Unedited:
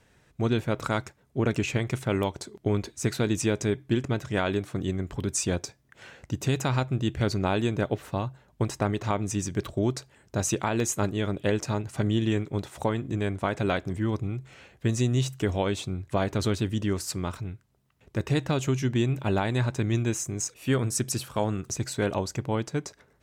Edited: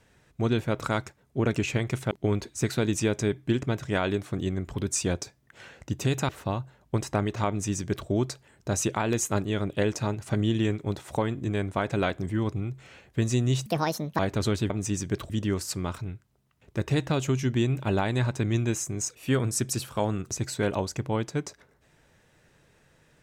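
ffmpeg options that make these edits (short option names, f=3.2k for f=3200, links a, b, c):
-filter_complex "[0:a]asplit=7[a][b][c][d][e][f][g];[a]atrim=end=2.112[h];[b]atrim=start=2.528:end=6.712[i];[c]atrim=start=7.958:end=15.334[j];[d]atrim=start=15.33:end=16.18,asetpts=PTS-STARTPTS,asetrate=71001,aresample=44100[k];[e]atrim=start=16.176:end=16.692[l];[f]atrim=start=9.148:end=9.752[m];[g]atrim=start=16.688[n];[h][i]acrossfade=d=0.004:c1=hsin:c2=hsin[o];[o][j]acrossfade=d=0.004:c1=hsin:c2=hsin[p];[p][k]acrossfade=d=0.004:c1=hsin:c2=hsin[q];[q][l]acrossfade=d=0.004:c1=hsin:c2=hsin[r];[r][m]acrossfade=d=0.004:c1=hsin:c2=hsin[s];[s][n]acrossfade=d=0.004:c1=hsin:c2=hsin"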